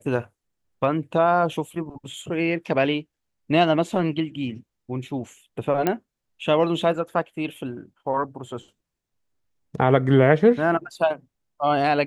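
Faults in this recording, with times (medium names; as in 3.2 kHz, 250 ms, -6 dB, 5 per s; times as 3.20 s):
5.87 s: pop -8 dBFS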